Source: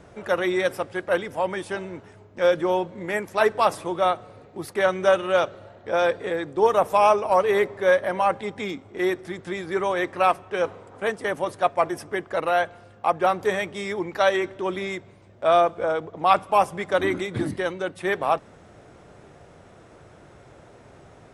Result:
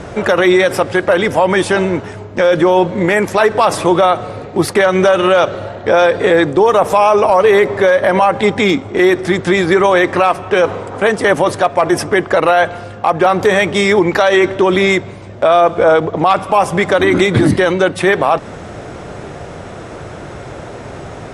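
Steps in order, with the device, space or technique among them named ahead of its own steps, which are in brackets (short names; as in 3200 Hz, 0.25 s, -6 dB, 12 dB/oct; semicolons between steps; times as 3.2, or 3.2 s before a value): loud club master (compressor 2:1, threshold -22 dBFS, peak gain reduction 6.5 dB; hard clip -13 dBFS, distortion -35 dB; maximiser +21 dB); LPF 9800 Hz 12 dB/oct; gain -1 dB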